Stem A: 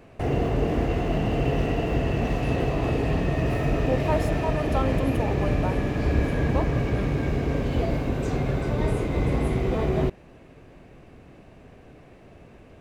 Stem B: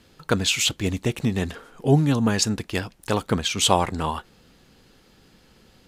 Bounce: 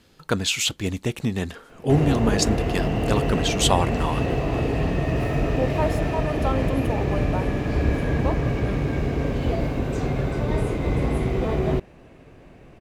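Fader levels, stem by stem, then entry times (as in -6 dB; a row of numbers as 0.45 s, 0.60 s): +1.0 dB, -1.5 dB; 1.70 s, 0.00 s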